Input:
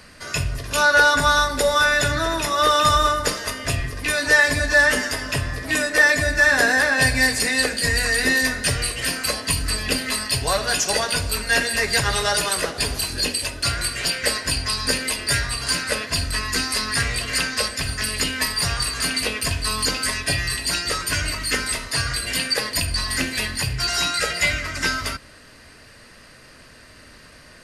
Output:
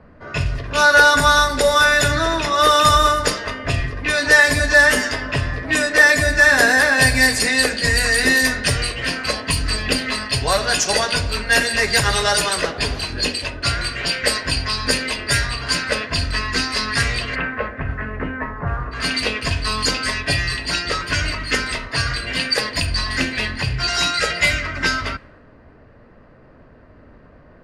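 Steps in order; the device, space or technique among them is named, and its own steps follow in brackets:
0:17.34–0:18.91: low-pass filter 2,400 Hz → 1,400 Hz 24 dB per octave
cassette deck with a dynamic noise filter (white noise bed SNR 34 dB; low-pass that shuts in the quiet parts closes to 770 Hz, open at −15.5 dBFS)
level +3.5 dB

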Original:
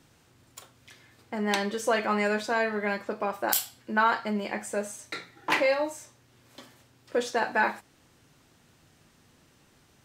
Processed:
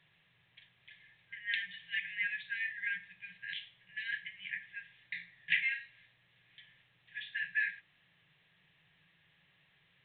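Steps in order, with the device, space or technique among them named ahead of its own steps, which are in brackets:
0:02.24–0:02.82: high-pass filter 56 Hz 12 dB per octave
brick-wall band-stop 190–1,600 Hz
telephone (band-pass filter 250–3,400 Hz; level −1.5 dB; A-law companding 64 kbit/s 8,000 Hz)

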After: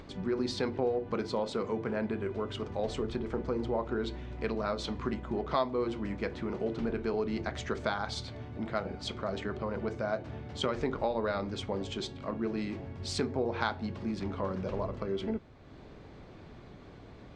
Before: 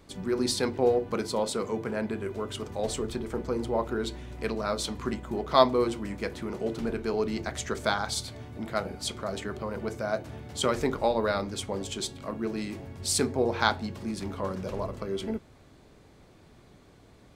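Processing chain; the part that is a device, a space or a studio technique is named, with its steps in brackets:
high-frequency loss of the air 160 metres
upward and downward compression (upward compression, threshold −42 dBFS; downward compressor 3 to 1, threshold −28 dBFS, peak gain reduction 11 dB)

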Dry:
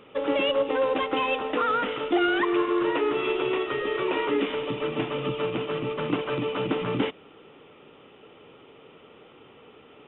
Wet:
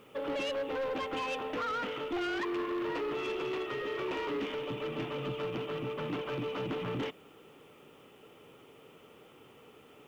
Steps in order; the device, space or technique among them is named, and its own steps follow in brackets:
open-reel tape (soft clipping −25 dBFS, distortion −11 dB; parametric band 130 Hz +2.5 dB 0.91 octaves; white noise bed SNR 36 dB)
level −5.5 dB

